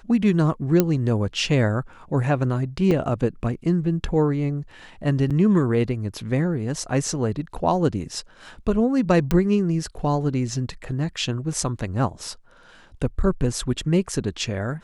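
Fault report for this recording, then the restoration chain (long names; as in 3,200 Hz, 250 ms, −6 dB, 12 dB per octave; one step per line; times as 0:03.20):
0:00.80: click −4 dBFS
0:02.91: drop-out 3.4 ms
0:05.30–0:05.31: drop-out 6.5 ms
0:09.31: click −9 dBFS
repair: click removal
repair the gap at 0:02.91, 3.4 ms
repair the gap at 0:05.30, 6.5 ms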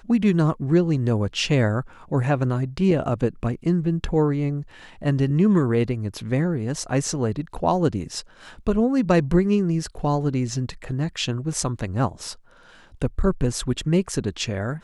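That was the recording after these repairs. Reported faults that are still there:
none of them is left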